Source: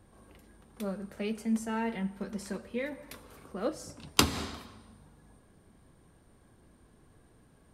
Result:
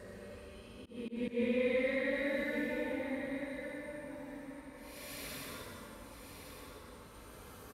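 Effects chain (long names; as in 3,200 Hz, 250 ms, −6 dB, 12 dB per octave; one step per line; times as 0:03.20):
extreme stretch with random phases 11×, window 0.10 s, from 0:02.64
volume swells 147 ms
single-tap delay 1,160 ms −9 dB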